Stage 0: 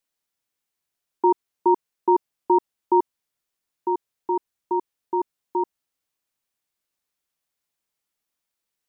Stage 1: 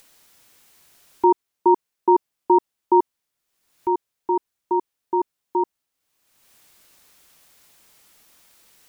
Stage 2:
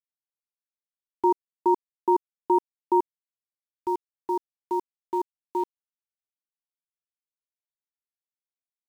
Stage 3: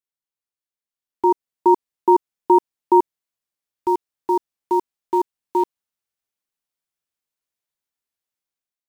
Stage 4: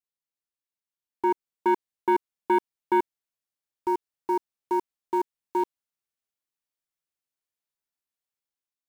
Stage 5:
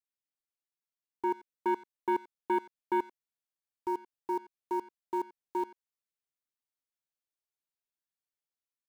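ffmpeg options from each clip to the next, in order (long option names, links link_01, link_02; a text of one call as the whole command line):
ffmpeg -i in.wav -af "acompressor=mode=upward:threshold=-38dB:ratio=2.5,volume=2.5dB" out.wav
ffmpeg -i in.wav -af "aeval=exprs='val(0)*gte(abs(val(0)),0.0158)':channel_layout=same,volume=-5.5dB" out.wav
ffmpeg -i in.wav -af "dynaudnorm=framelen=840:gausssize=3:maxgain=8dB" out.wav
ffmpeg -i in.wav -af "asoftclip=type=tanh:threshold=-10dB,volume=-5dB" out.wav
ffmpeg -i in.wav -filter_complex "[0:a]asplit=2[link_01][link_02];[link_02]adelay=90,highpass=300,lowpass=3400,asoftclip=type=hard:threshold=-24dB,volume=-18dB[link_03];[link_01][link_03]amix=inputs=2:normalize=0,volume=-7dB" out.wav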